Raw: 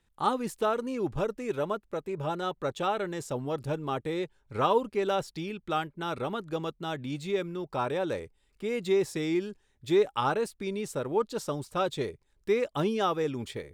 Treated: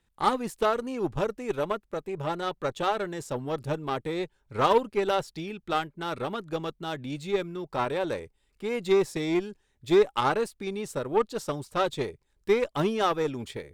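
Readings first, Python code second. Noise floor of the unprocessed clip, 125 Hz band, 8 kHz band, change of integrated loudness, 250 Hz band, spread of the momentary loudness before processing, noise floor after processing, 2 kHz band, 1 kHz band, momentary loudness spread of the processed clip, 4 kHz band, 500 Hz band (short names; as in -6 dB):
-70 dBFS, +0.5 dB, +1.0 dB, +2.0 dB, +1.0 dB, 8 LU, -71 dBFS, +3.0 dB, +2.5 dB, 10 LU, +2.5 dB, +2.0 dB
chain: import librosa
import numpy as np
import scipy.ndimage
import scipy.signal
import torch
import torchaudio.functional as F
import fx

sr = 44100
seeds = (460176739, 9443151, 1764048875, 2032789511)

y = fx.cheby_harmonics(x, sr, harmonics=(6, 7), levels_db=(-26, -27), full_scale_db=-13.5)
y = y * 10.0 ** (3.0 / 20.0)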